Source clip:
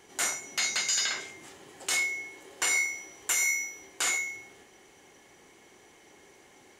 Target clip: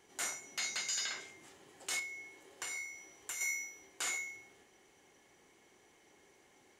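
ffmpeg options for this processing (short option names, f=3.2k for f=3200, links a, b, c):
-filter_complex "[0:a]asettb=1/sr,asplit=3[a][b][c];[a]atrim=end=1.994[d];[b]atrim=start=1.99:end=3.41,asetpts=PTS-STARTPTS,afade=t=in:d=0.004:c=qsin,afade=t=out:st=1.416:d=0.004:c=qsin,acrossover=split=150[e][f];[f]acompressor=threshold=-35dB:ratio=2[g];[e][g]amix=inputs=2:normalize=0[h];[c]atrim=start=3.406[i];[d][h]acrossfade=d=0.004:c1=hsin:c2=qsin[j];[j][i]acrossfade=d=0.004:c1=qsin:c2=hsin,volume=-9dB"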